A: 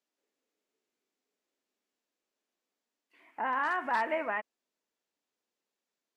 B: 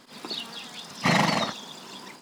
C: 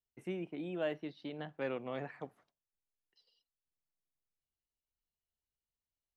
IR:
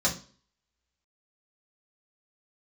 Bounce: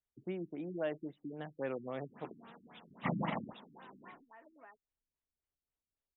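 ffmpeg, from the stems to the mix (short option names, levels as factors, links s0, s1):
-filter_complex "[0:a]aecho=1:1:7.2:0.43,acompressor=threshold=0.00631:ratio=2,adelay=350,volume=0.168[s0];[1:a]adelay=2000,volume=0.282[s1];[2:a]volume=0.944[s2];[s0][s1][s2]amix=inputs=3:normalize=0,highshelf=f=4600:g=-9.5,afftfilt=real='re*lt(b*sr/1024,340*pow(4000/340,0.5+0.5*sin(2*PI*3.7*pts/sr)))':imag='im*lt(b*sr/1024,340*pow(4000/340,0.5+0.5*sin(2*PI*3.7*pts/sr)))':win_size=1024:overlap=0.75"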